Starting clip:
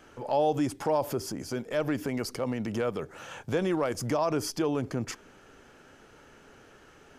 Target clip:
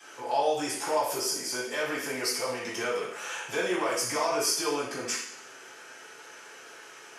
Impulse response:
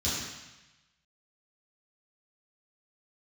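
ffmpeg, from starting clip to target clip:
-filter_complex "[0:a]highpass=1000,asplit=2[link_01][link_02];[link_02]acompressor=threshold=-47dB:ratio=6,volume=0dB[link_03];[link_01][link_03]amix=inputs=2:normalize=0,flanger=delay=3.7:depth=2.2:regen=-83:speed=0.62:shape=sinusoidal[link_04];[1:a]atrim=start_sample=2205,asetrate=70560,aresample=44100[link_05];[link_04][link_05]afir=irnorm=-1:irlink=0,volume=5.5dB"

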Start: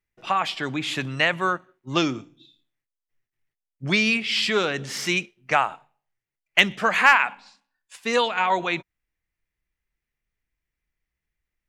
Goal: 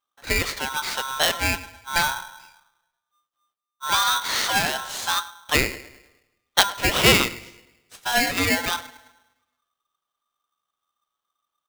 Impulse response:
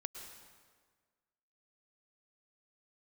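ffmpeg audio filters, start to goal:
-filter_complex "[0:a]asplit=2[link_01][link_02];[link_02]adelay=106,lowpass=frequency=1200:poles=1,volume=-14dB,asplit=2[link_03][link_04];[link_04]adelay=106,lowpass=frequency=1200:poles=1,volume=0.51,asplit=2[link_05][link_06];[link_06]adelay=106,lowpass=frequency=1200:poles=1,volume=0.51,asplit=2[link_07][link_08];[link_08]adelay=106,lowpass=frequency=1200:poles=1,volume=0.51,asplit=2[link_09][link_10];[link_10]adelay=106,lowpass=frequency=1200:poles=1,volume=0.51[link_11];[link_01][link_03][link_05][link_07][link_09][link_11]amix=inputs=6:normalize=0,asplit=2[link_12][link_13];[1:a]atrim=start_sample=2205,asetrate=57330,aresample=44100,highshelf=frequency=2900:gain=-11[link_14];[link_13][link_14]afir=irnorm=-1:irlink=0,volume=-11dB[link_15];[link_12][link_15]amix=inputs=2:normalize=0,aeval=exprs='val(0)*sgn(sin(2*PI*1200*n/s))':channel_layout=same,volume=-1dB"

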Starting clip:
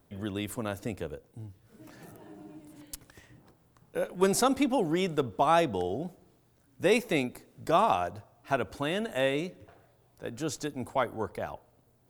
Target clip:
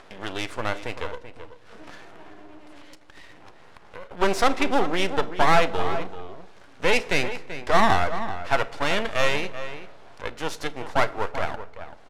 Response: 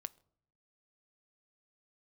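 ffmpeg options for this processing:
-filter_complex "[0:a]lowshelf=frequency=270:gain=-11,acompressor=mode=upward:threshold=-45dB:ratio=2.5,asplit=2[link_01][link_02];[link_02]highpass=frequency=720:poles=1,volume=23dB,asoftclip=type=tanh:threshold=-1.5dB[link_03];[link_01][link_03]amix=inputs=2:normalize=0,lowpass=frequency=2900:poles=1,volume=-6dB,asettb=1/sr,asplit=3[link_04][link_05][link_06];[link_04]atrim=end=1.964[link_07];[link_05]atrim=start=1.96:end=4.11,asetpts=PTS-STARTPTS,afade=type=in:duration=0.004:curve=qsin,afade=type=out:start_time=2.146:duration=0.004:curve=qsin,acompressor=threshold=-40dB:ratio=3[link_08];[link_06]atrim=start=4.106[link_09];[link_07][link_08]acrossfade=duration=0.004:curve1=hsin:curve2=qsin[link_10];[link_10][link_09]acrossfade=duration=0.004:curve1=qsin:curve2=hsin,lowpass=4900,aeval=exprs='max(val(0),0)':channel_layout=same,asplit=2[link_11][link_12];[link_12]adelay=384.8,volume=-11dB,highshelf=frequency=4000:gain=-8.66[link_13];[link_11][link_13]amix=inputs=2:normalize=0[link_14];[1:a]atrim=start_sample=2205,asetrate=23373,aresample=44100[link_15];[link_14][link_15]afir=irnorm=-1:irlink=0"

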